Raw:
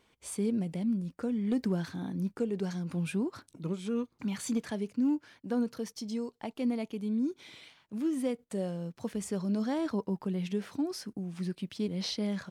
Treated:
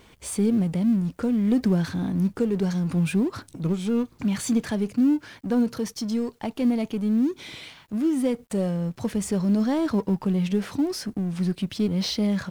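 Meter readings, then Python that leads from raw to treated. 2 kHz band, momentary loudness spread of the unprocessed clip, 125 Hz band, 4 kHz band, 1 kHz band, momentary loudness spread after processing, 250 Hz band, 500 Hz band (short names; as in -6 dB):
+8.0 dB, 7 LU, +10.0 dB, +7.5 dB, +7.5 dB, 6 LU, +9.0 dB, +7.0 dB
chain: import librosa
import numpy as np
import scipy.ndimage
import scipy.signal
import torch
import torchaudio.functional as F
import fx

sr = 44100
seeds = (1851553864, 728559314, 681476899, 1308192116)

y = fx.law_mismatch(x, sr, coded='mu')
y = fx.low_shelf(y, sr, hz=160.0, db=8.0)
y = y * 10.0 ** (5.0 / 20.0)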